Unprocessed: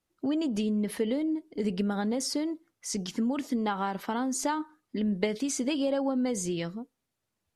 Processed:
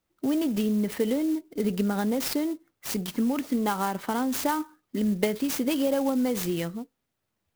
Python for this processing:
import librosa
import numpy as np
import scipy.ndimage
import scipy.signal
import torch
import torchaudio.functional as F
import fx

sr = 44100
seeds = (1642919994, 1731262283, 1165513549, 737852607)

y = fx.clock_jitter(x, sr, seeds[0], jitter_ms=0.038)
y = F.gain(torch.from_numpy(y), 3.0).numpy()